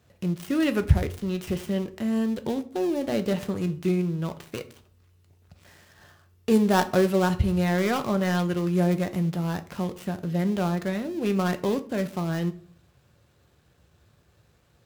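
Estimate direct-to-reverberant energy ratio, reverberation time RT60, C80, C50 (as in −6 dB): 8.5 dB, 0.50 s, 20.5 dB, 16.0 dB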